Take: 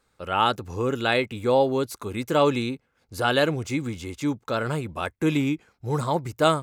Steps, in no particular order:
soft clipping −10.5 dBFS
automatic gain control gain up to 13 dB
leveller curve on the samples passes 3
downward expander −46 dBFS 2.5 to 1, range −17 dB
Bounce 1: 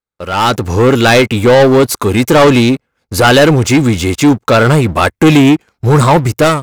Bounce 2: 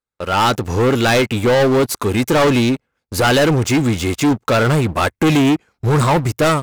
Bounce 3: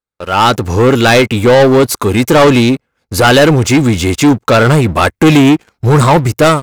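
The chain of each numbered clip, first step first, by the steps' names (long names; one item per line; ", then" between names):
soft clipping, then leveller curve on the samples, then automatic gain control, then downward expander
leveller curve on the samples, then downward expander, then automatic gain control, then soft clipping
soft clipping, then automatic gain control, then leveller curve on the samples, then downward expander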